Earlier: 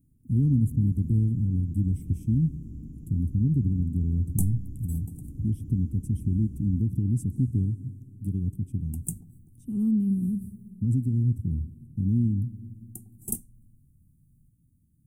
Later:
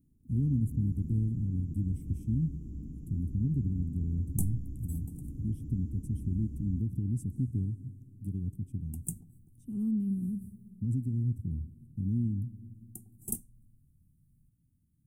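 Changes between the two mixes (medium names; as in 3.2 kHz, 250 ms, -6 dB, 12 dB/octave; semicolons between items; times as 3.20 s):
speech -6.5 dB; second sound -4.0 dB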